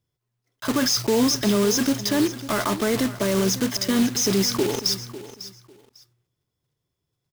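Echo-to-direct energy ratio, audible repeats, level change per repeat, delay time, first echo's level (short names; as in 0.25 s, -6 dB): -15.0 dB, 2, -13.5 dB, 0.549 s, -15.0 dB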